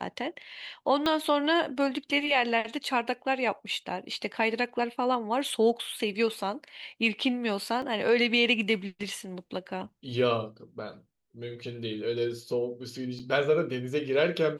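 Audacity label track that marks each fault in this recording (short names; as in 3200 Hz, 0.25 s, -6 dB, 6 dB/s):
1.060000	1.060000	pop -15 dBFS
7.820000	7.820000	gap 2.6 ms
13.190000	13.200000	gap 5.8 ms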